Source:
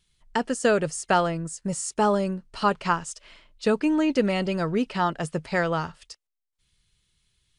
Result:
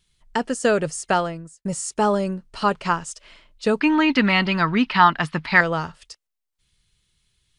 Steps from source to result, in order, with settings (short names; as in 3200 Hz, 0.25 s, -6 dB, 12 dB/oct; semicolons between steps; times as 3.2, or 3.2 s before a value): 1.08–1.65 fade out; 3.81–5.61 graphic EQ 250/500/1000/2000/4000/8000 Hz +6/-11/+11/+9/+10/-12 dB; gain +2 dB